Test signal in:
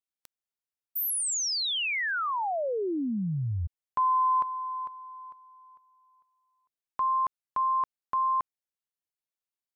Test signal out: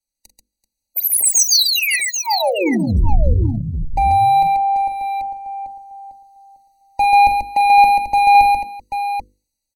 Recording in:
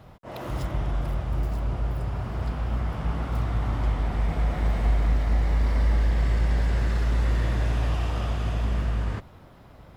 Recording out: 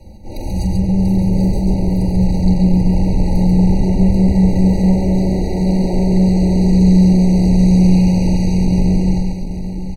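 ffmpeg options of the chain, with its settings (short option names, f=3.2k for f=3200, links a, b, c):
-filter_complex "[0:a]afreqshift=-240,aemphasis=mode=reproduction:type=bsi,aecho=1:1:3.6:0.81,dynaudnorm=f=320:g=7:m=11dB,bandreject=f=50:t=h:w=6,bandreject=f=100:t=h:w=6,bandreject=f=150:t=h:w=6,bandreject=f=200:t=h:w=6,bandreject=f=250:t=h:w=6,bandreject=f=300:t=h:w=6,bandreject=f=350:t=h:w=6,bandreject=f=400:t=h:w=6,bandreject=f=450:t=h:w=6,bandreject=f=500:t=h:w=6,asplit=2[a][b];[b]volume=16dB,asoftclip=hard,volume=-16dB,volume=-10dB[c];[a][c]amix=inputs=2:normalize=0,aexciter=amount=9.6:drive=1.1:freq=3.8k,asoftclip=type=tanh:threshold=-11dB,aecho=1:1:42|44|137|386|787:0.112|0.335|0.668|0.126|0.422,afftfilt=real='re*eq(mod(floor(b*sr/1024/960),2),0)':imag='im*eq(mod(floor(b*sr/1024/960),2),0)':win_size=1024:overlap=0.75"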